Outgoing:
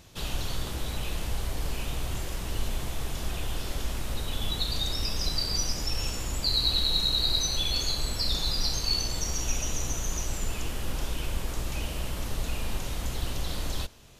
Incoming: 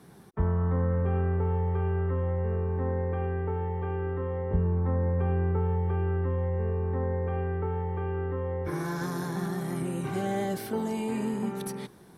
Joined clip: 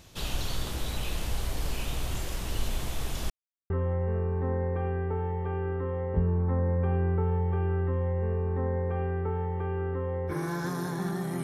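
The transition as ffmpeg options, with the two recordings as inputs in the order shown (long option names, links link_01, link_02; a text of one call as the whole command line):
ffmpeg -i cue0.wav -i cue1.wav -filter_complex "[0:a]apad=whole_dur=11.43,atrim=end=11.43,asplit=2[link_01][link_02];[link_01]atrim=end=3.3,asetpts=PTS-STARTPTS,afade=type=out:start_time=3.296:duration=0.004:curve=hsin[link_03];[link_02]atrim=start=3.3:end=3.7,asetpts=PTS-STARTPTS,volume=0[link_04];[1:a]atrim=start=2.07:end=9.8,asetpts=PTS-STARTPTS,afade=type=in:duration=0.004:curve=hsin[link_05];[link_03][link_04][link_05]concat=n=3:v=0:a=1" out.wav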